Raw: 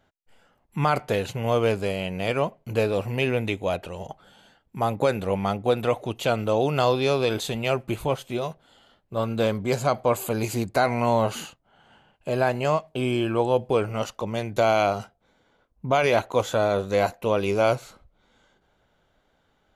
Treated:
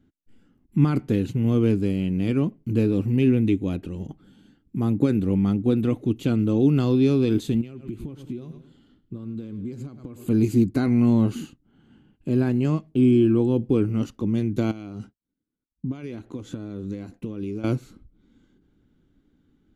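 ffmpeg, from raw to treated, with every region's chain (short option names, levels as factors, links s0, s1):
-filter_complex "[0:a]asettb=1/sr,asplit=3[s0][s1][s2];[s0]atrim=end=7.614[s3];[s1]atrim=start=7.61:end=10.28,asetpts=PTS-STARTPTS,afade=t=in:d=0.004:c=qsin,afade=t=out:st=2.666:d=0.004:c=qsin,highshelf=f=8200:g=-4.5,aecho=1:1:104|208|312:0.126|0.0415|0.0137,atrim=end_sample=117747,acompressor=threshold=0.0178:ratio=16:attack=3.2:release=140:knee=1:detection=peak[s4];[s2]atrim=start=10.276[s5];[s3][s4]acrossfade=d=0.004:c1=hsin:c2=qsin[s6];[s6][s5]acrossfade=d=0.004:c1=qsin:c2=hsin,asettb=1/sr,asplit=3[s7][s8][s9];[s7]atrim=end=14.714[s10];[s8]atrim=start=14.71:end=17.64,asetpts=PTS-STARTPTS,afade=t=in:d=0.004:c=qsin,afade=t=out:st=2.926:d=0.004:c=qsin,lowpass=f=11000:w=0.5412,lowpass=f=11000:w=1.3066,agate=range=0.0224:threshold=0.00316:ratio=3:release=100:detection=peak,acompressor=threshold=0.0224:ratio=4:attack=3.2:release=140:knee=1:detection=peak[s11];[s9]atrim=start=17.636[s12];[s10][s11]acrossfade=d=0.004:c1=hsin:c2=qsin[s13];[s13][s12]acrossfade=d=0.004:c1=qsin:c2=hsin,lowshelf=f=430:t=q:w=3:g=13.5,bandreject=f=960:w=17,volume=0.376"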